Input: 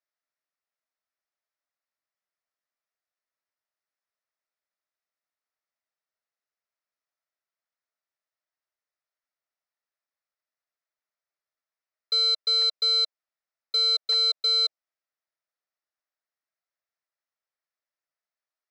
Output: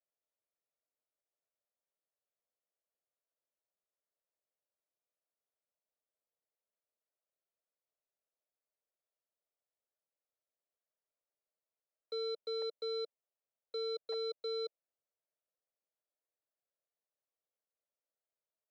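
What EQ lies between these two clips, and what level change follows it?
band-pass filter 490 Hz, Q 2.4; +4.0 dB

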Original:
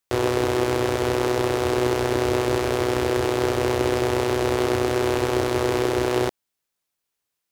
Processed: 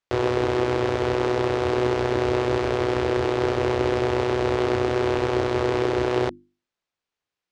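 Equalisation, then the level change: distance through air 120 m; hum notches 50/100/150/200/250/300/350 Hz; 0.0 dB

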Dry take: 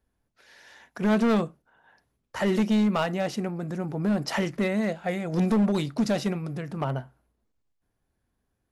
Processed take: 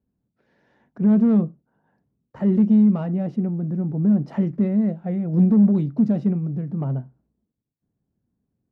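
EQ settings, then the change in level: band-pass filter 180 Hz, Q 1.5; +8.5 dB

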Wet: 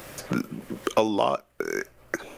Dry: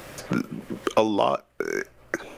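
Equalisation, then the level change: treble shelf 8.7 kHz +7.5 dB; -1.5 dB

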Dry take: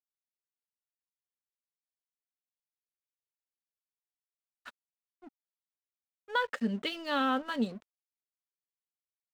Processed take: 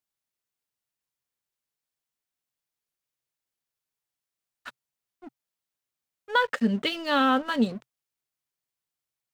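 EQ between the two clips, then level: peaking EQ 130 Hz +8 dB 0.31 oct; +7.0 dB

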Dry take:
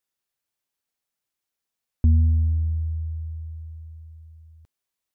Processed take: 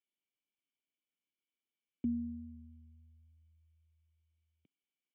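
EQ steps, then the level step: cascade formant filter i; high-pass 190 Hz 24 dB/octave; peaking EQ 260 Hz -12.5 dB 0.81 oct; +10.5 dB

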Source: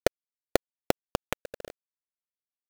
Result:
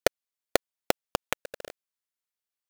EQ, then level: bass shelf 450 Hz -9.5 dB; +4.0 dB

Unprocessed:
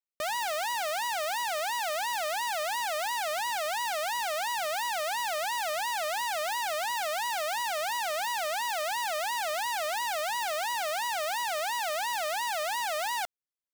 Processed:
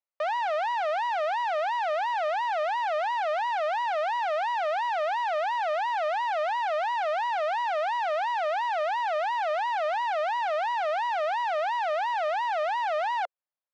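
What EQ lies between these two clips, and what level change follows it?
Chebyshev high-pass 540 Hz, order 5; tape spacing loss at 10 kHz 42 dB; +9.0 dB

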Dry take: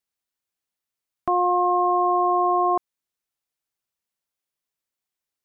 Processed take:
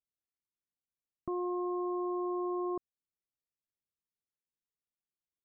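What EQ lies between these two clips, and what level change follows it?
boxcar filter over 55 samples; -5.0 dB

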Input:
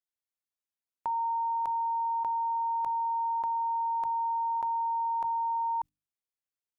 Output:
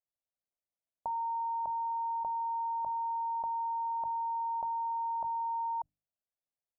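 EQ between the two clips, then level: FFT filter 170 Hz 0 dB, 390 Hz -7 dB, 640 Hz +6 dB, 2.1 kHz -27 dB; 0.0 dB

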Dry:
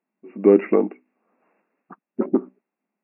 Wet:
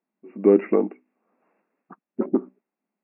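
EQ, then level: distance through air 240 m; -1.5 dB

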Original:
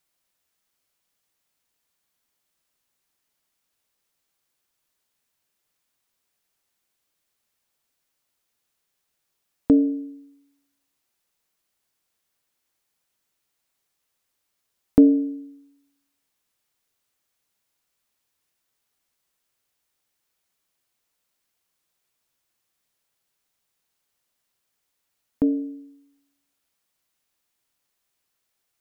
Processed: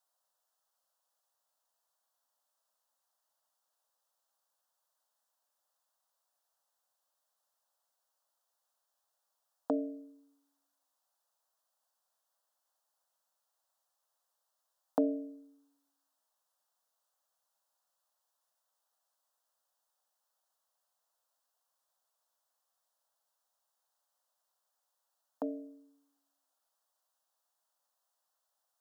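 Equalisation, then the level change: ladder high-pass 400 Hz, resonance 30%; tilt EQ -1.5 dB/octave; static phaser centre 940 Hz, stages 4; +6.0 dB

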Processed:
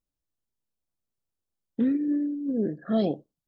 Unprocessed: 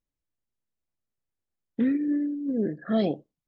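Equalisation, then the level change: peaking EQ 2.1 kHz -9 dB 0.73 oct; 0.0 dB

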